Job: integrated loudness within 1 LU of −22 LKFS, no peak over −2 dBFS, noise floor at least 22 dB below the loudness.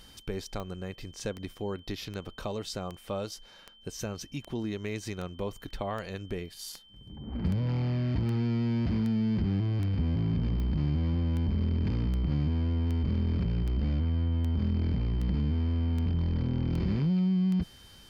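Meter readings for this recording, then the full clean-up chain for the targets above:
number of clicks 23; interfering tone 3,100 Hz; level of the tone −55 dBFS; integrated loudness −31.0 LKFS; sample peak −17.5 dBFS; target loudness −22.0 LKFS
→ click removal
notch filter 3,100 Hz, Q 30
level +9 dB

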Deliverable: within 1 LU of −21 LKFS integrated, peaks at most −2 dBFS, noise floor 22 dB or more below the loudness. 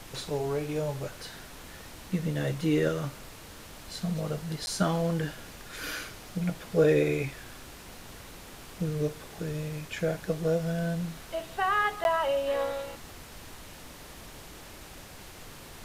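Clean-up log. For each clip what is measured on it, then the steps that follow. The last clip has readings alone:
number of dropouts 2; longest dropout 11 ms; background noise floor −47 dBFS; target noise floor −53 dBFS; integrated loudness −30.5 LKFS; sample peak −12.5 dBFS; target loudness −21.0 LKFS
→ repair the gap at 0:04.66/0:12.04, 11 ms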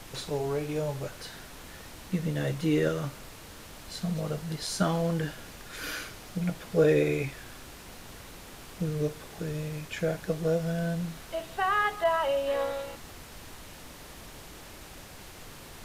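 number of dropouts 0; background noise floor −47 dBFS; target noise floor −53 dBFS
→ noise reduction from a noise print 6 dB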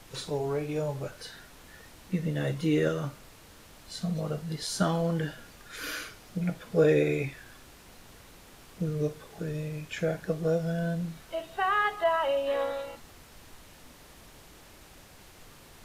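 background noise floor −53 dBFS; integrated loudness −30.5 LKFS; sample peak −12.5 dBFS; target loudness −21.0 LKFS
→ level +9.5 dB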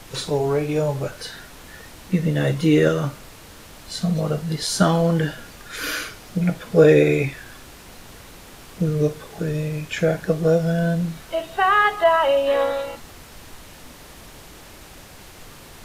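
integrated loudness −21.0 LKFS; sample peak −3.0 dBFS; background noise floor −44 dBFS

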